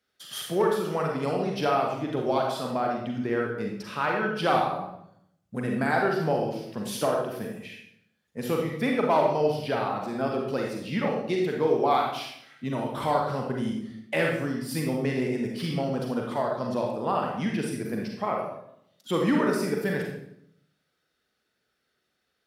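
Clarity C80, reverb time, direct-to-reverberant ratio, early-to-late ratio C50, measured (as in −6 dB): 5.5 dB, 0.75 s, −0.5 dB, 2.0 dB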